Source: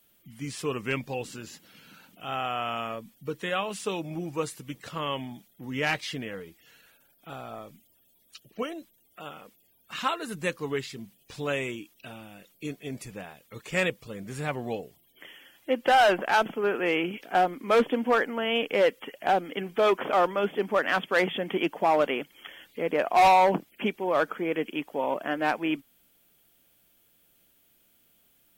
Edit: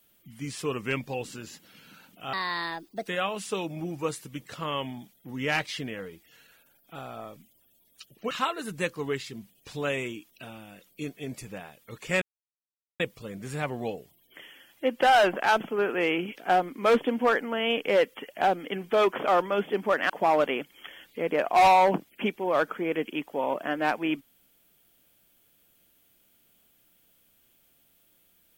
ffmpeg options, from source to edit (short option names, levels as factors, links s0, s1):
-filter_complex "[0:a]asplit=6[s0][s1][s2][s3][s4][s5];[s0]atrim=end=2.334[s6];[s1]atrim=start=2.33:end=3.42,asetpts=PTS-STARTPTS,asetrate=64386,aresample=44100[s7];[s2]atrim=start=3.416:end=8.652[s8];[s3]atrim=start=9.938:end=13.85,asetpts=PTS-STARTPTS,afade=t=out:st=3.908:d=0.004:c=hsin,apad=pad_dur=0.78[s9];[s4]atrim=start=13.85:end=20.952,asetpts=PTS-STARTPTS,afade=t=in:d=0.004:c=hsin[s10];[s5]atrim=start=21.698[s11];[s6][s7]acrossfade=d=0.004:c1=hsin:c2=hsin[s12];[s12][s8]acrossfade=d=0.004:c1=hsin:c2=hsin[s13];[s9][s10]concat=n=2:v=0:a=1[s14];[s13][s14]acrossfade=d=0.004:c1=hsin:c2=hsin[s15];[s15][s11]acrossfade=d=0.004:c1=hsin:c2=hsin"